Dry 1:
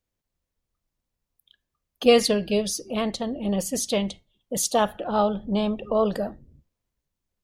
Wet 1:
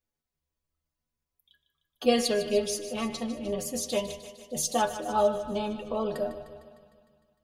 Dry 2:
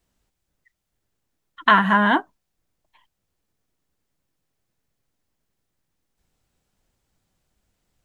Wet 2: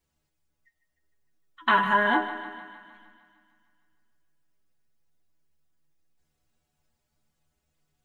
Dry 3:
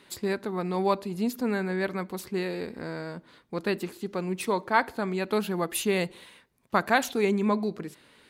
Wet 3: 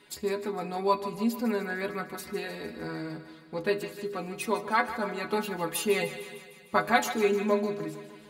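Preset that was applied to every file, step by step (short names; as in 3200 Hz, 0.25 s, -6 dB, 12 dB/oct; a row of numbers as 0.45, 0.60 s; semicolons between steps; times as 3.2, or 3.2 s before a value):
metallic resonator 74 Hz, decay 0.28 s, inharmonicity 0.008; thinning echo 0.152 s, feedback 65%, high-pass 370 Hz, level -12.5 dB; shoebox room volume 2100 m³, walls mixed, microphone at 0.39 m; normalise peaks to -9 dBFS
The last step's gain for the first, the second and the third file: +3.0, +2.5, +7.0 dB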